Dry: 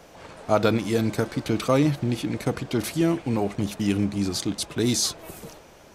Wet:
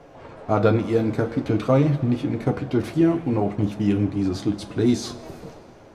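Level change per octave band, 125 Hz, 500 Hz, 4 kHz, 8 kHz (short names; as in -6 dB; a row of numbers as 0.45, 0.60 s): +4.0 dB, +2.5 dB, -8.0 dB, under -10 dB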